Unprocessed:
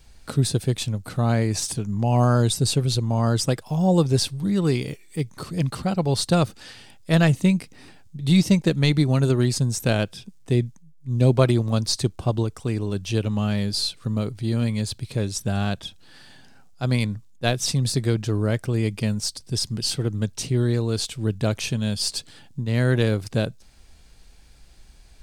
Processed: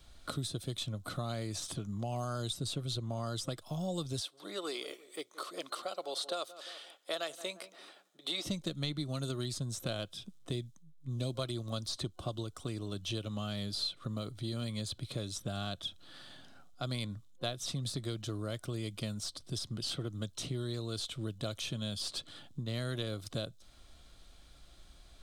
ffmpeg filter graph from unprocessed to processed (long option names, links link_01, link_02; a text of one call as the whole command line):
ffmpeg -i in.wav -filter_complex "[0:a]asettb=1/sr,asplit=3[link_01][link_02][link_03];[link_01]atrim=end=4.204[link_04];[link_02]atrim=start=4.2:end=8.45,asetpts=PTS-STARTPTS,afade=type=in:duration=0.004:curve=qsin,afade=type=out:start_time=4.246:duration=0.004:curve=qsin,highpass=frequency=410:width=0.5412,highpass=frequency=410:width=1.3066,asplit=2[link_05][link_06];[link_06]adelay=173,lowpass=frequency=1400:poles=1,volume=-19dB,asplit=2[link_07][link_08];[link_08]adelay=173,lowpass=frequency=1400:poles=1,volume=0.37,asplit=2[link_09][link_10];[link_10]adelay=173,lowpass=frequency=1400:poles=1,volume=0.37[link_11];[link_05][link_07][link_09][link_11]amix=inputs=4:normalize=0,atrim=end_sample=187425[link_12];[link_03]atrim=start=8.446[link_13];[link_04][link_12]acrossfade=duration=0.004:curve1=hsin:curve2=qsin[link_14];[link_14][link_13]acrossfade=duration=0.004:curve1=qsin:curve2=hsin,superequalizer=6b=1.58:8b=2:10b=2.24:13b=2.24,acrossover=split=87|3500[link_15][link_16][link_17];[link_15]acompressor=threshold=-44dB:ratio=4[link_18];[link_16]acompressor=threshold=-31dB:ratio=4[link_19];[link_17]acompressor=threshold=-35dB:ratio=4[link_20];[link_18][link_19][link_20]amix=inputs=3:normalize=0,volume=-6.5dB" out.wav